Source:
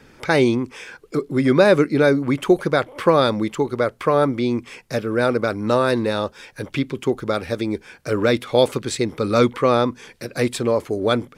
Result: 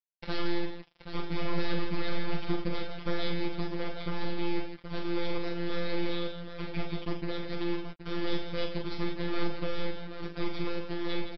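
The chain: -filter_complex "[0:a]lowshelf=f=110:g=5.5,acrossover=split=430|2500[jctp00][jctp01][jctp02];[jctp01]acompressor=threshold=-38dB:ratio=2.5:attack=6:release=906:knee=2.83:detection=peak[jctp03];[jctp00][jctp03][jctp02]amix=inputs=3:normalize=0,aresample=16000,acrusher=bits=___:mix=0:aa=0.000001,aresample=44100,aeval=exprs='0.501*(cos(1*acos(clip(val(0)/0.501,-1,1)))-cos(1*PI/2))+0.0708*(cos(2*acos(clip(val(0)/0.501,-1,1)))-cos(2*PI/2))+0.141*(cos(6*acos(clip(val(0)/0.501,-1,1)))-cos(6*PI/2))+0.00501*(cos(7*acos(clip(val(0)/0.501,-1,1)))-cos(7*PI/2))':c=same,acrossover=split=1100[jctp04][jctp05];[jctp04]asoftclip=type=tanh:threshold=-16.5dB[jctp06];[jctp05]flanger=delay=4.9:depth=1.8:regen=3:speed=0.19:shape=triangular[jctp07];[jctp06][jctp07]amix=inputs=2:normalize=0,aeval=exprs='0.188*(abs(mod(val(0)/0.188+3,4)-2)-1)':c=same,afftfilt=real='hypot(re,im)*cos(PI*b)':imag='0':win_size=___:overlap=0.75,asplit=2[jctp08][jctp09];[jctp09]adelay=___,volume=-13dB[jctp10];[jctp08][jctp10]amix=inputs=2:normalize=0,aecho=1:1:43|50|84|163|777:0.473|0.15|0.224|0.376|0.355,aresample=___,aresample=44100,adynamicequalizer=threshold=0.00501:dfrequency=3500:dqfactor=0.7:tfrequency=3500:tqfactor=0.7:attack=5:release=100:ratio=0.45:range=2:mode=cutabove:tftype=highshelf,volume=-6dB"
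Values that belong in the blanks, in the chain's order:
4, 1024, 18, 11025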